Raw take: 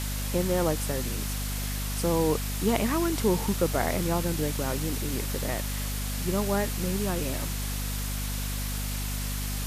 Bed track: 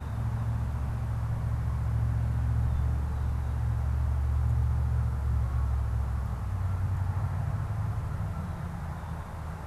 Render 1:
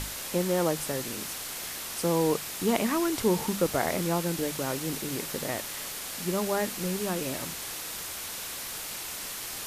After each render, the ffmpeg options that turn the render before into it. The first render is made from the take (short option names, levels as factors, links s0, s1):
-af "bandreject=f=50:t=h:w=6,bandreject=f=100:t=h:w=6,bandreject=f=150:t=h:w=6,bandreject=f=200:t=h:w=6,bandreject=f=250:t=h:w=6"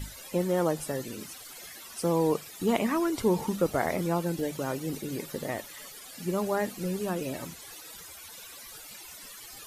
-af "afftdn=nr=16:nf=-38"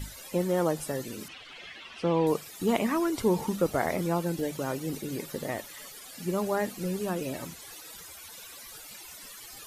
-filter_complex "[0:a]asettb=1/sr,asplit=3[s0][s1][s2];[s0]atrim=end=1.284[s3];[s1]atrim=start=1.28:end=2.27,asetpts=PTS-STARTPTS,afade=t=in:d=0.004:c=qsin,afade=t=out:st=0.986:d=0.004:c=qsin,lowpass=f=2900:t=q:w=2.6[s4];[s2]atrim=start=2.266[s5];[s3][s4]acrossfade=d=0.004:c1=hsin:c2=qsin[s6];[s6][s5]acrossfade=d=0.004:c1=qsin:c2=hsin"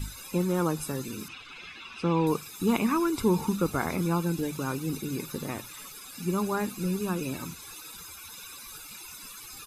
-af "bandreject=f=60:t=h:w=6,bandreject=f=120:t=h:w=6,aecho=1:1:0.8:0.66"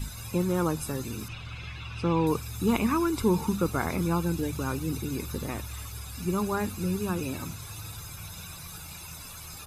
-filter_complex "[1:a]volume=0.266[s0];[0:a][s0]amix=inputs=2:normalize=0"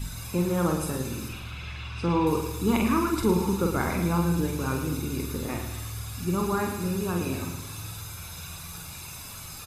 -filter_complex "[0:a]asplit=2[s0][s1];[s1]adelay=46,volume=0.596[s2];[s0][s2]amix=inputs=2:normalize=0,asplit=2[s3][s4];[s4]aecho=0:1:111|222|333|444|555:0.376|0.177|0.083|0.039|0.0183[s5];[s3][s5]amix=inputs=2:normalize=0"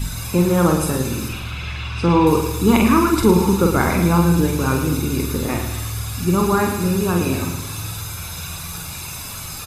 -af "volume=2.99,alimiter=limit=0.794:level=0:latency=1"